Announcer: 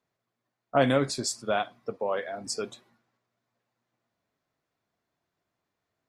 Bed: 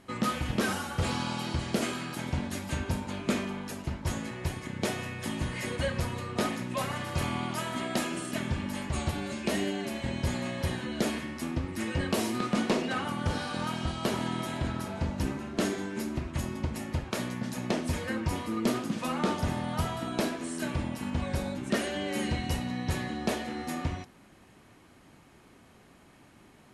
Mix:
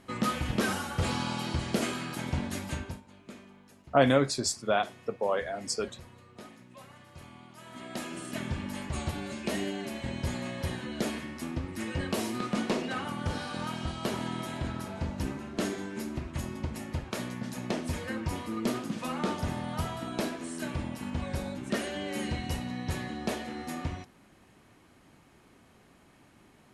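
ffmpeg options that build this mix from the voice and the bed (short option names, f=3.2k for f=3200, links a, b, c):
-filter_complex "[0:a]adelay=3200,volume=0.5dB[a];[1:a]volume=16dB,afade=t=out:st=2.63:d=0.39:silence=0.11885,afade=t=in:st=7.56:d=0.86:silence=0.158489[b];[a][b]amix=inputs=2:normalize=0"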